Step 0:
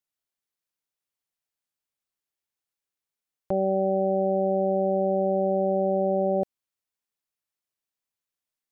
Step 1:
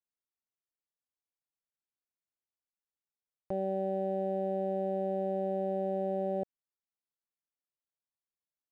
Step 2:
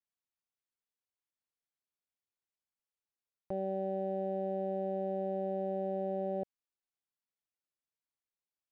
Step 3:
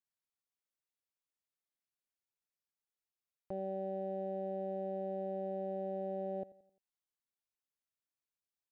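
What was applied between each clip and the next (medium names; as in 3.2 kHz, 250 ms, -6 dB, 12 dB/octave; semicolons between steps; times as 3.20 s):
local Wiener filter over 15 samples; trim -8.5 dB
distance through air 51 m; trim -2.5 dB
feedback delay 87 ms, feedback 46%, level -19.5 dB; trim -4 dB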